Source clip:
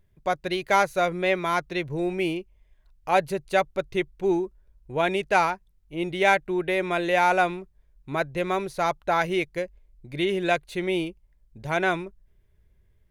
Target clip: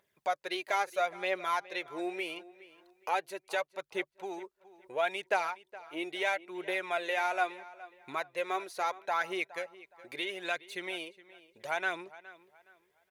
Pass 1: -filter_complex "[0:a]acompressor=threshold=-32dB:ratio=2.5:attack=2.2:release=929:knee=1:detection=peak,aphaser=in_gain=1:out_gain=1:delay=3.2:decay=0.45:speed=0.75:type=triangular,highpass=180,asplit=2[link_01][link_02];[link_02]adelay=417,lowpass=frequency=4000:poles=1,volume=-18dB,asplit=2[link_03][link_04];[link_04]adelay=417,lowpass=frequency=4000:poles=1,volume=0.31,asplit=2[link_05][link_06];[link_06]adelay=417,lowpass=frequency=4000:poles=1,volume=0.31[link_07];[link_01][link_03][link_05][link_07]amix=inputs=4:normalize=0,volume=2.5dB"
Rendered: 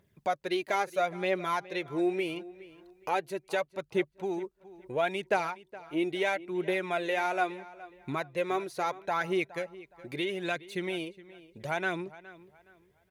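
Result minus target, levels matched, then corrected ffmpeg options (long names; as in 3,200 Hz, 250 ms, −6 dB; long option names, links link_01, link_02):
250 Hz band +7.0 dB
-filter_complex "[0:a]acompressor=threshold=-32dB:ratio=2.5:attack=2.2:release=929:knee=1:detection=peak,aphaser=in_gain=1:out_gain=1:delay=3.2:decay=0.45:speed=0.75:type=triangular,highpass=580,asplit=2[link_01][link_02];[link_02]adelay=417,lowpass=frequency=4000:poles=1,volume=-18dB,asplit=2[link_03][link_04];[link_04]adelay=417,lowpass=frequency=4000:poles=1,volume=0.31,asplit=2[link_05][link_06];[link_06]adelay=417,lowpass=frequency=4000:poles=1,volume=0.31[link_07];[link_01][link_03][link_05][link_07]amix=inputs=4:normalize=0,volume=2.5dB"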